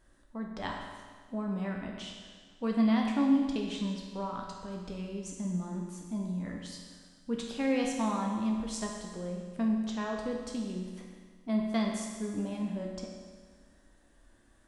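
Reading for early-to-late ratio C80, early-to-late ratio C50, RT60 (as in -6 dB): 4.0 dB, 2.5 dB, 1.6 s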